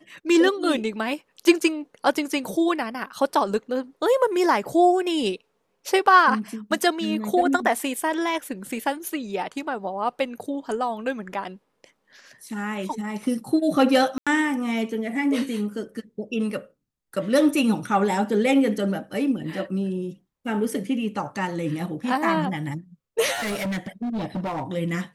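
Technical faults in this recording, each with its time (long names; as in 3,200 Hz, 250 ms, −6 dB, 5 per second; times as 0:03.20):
0:14.18–0:14.27: drop-out 86 ms
0:23.33–0:24.64: clipping −24.5 dBFS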